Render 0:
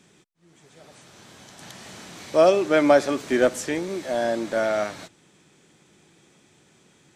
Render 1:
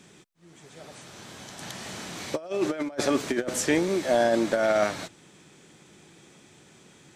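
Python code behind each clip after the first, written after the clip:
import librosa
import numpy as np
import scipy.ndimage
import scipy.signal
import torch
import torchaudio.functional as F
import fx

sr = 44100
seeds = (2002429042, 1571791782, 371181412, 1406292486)

y = fx.over_compress(x, sr, threshold_db=-24.0, ratio=-0.5)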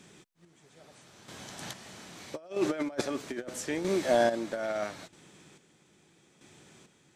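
y = fx.chopper(x, sr, hz=0.78, depth_pct=60, duty_pct=35)
y = F.gain(torch.from_numpy(y), -2.0).numpy()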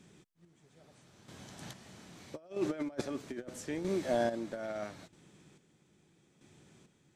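y = fx.low_shelf(x, sr, hz=310.0, db=9.0)
y = F.gain(torch.from_numpy(y), -8.5).numpy()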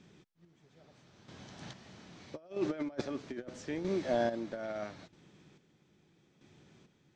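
y = scipy.signal.sosfilt(scipy.signal.butter(4, 6000.0, 'lowpass', fs=sr, output='sos'), x)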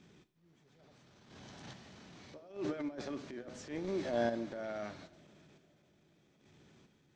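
y = fx.rev_double_slope(x, sr, seeds[0], early_s=0.52, late_s=3.9, knee_db=-20, drr_db=13.0)
y = fx.transient(y, sr, attack_db=-11, sustain_db=1)
y = F.gain(torch.from_numpy(y), -1.0).numpy()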